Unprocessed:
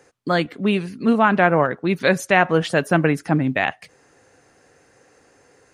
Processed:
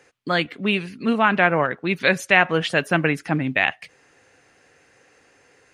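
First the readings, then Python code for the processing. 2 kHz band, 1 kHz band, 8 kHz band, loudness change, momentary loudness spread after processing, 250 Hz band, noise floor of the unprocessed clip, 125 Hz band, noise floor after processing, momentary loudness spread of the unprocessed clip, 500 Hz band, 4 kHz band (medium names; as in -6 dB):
+2.0 dB, -2.5 dB, -2.5 dB, -1.0 dB, 7 LU, -4.0 dB, -57 dBFS, -4.0 dB, -58 dBFS, 6 LU, -3.5 dB, +3.5 dB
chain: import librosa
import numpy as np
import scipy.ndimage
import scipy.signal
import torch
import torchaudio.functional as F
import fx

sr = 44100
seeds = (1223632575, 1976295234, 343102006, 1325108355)

y = fx.peak_eq(x, sr, hz=2600.0, db=9.0, octaves=1.5)
y = F.gain(torch.from_numpy(y), -4.0).numpy()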